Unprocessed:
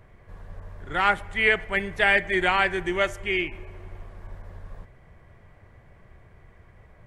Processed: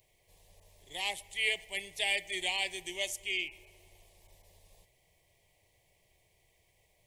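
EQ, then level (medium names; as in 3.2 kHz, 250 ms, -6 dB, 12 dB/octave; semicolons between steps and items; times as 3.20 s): Butterworth band-stop 1.4 kHz, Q 0.83; pre-emphasis filter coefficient 0.97; peaking EQ 230 Hz -14 dB 0.21 oct; +7.0 dB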